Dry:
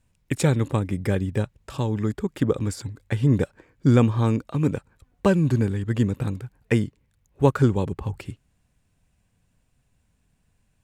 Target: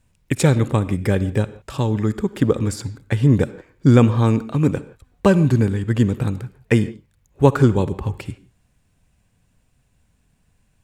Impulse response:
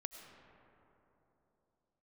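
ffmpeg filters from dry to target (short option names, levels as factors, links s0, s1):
-filter_complex "[0:a]asplit=2[s0][s1];[1:a]atrim=start_sample=2205,afade=t=out:st=0.38:d=0.01,atrim=end_sample=17199,asetrate=83790,aresample=44100[s2];[s1][s2]afir=irnorm=-1:irlink=0,volume=1.41[s3];[s0][s3]amix=inputs=2:normalize=0,volume=1.19"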